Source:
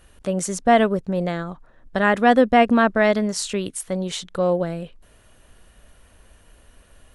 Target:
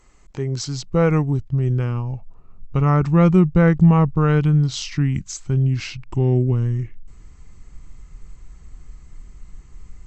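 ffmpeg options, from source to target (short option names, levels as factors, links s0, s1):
-af "asetrate=31311,aresample=44100,asubboost=boost=7:cutoff=180,volume=0.75"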